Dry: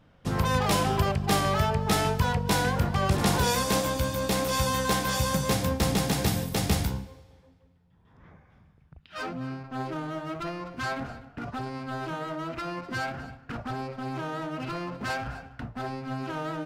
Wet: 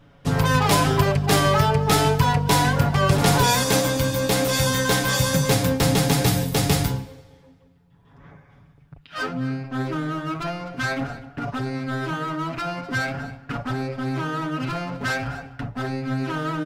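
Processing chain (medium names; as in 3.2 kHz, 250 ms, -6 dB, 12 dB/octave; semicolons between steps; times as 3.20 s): comb 7.1 ms, depth 68%; trim +5 dB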